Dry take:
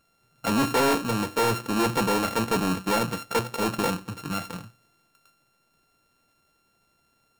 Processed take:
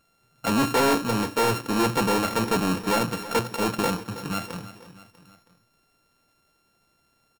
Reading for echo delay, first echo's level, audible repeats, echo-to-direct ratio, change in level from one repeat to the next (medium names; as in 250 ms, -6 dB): 322 ms, -15.0 dB, 3, -13.5 dB, -5.5 dB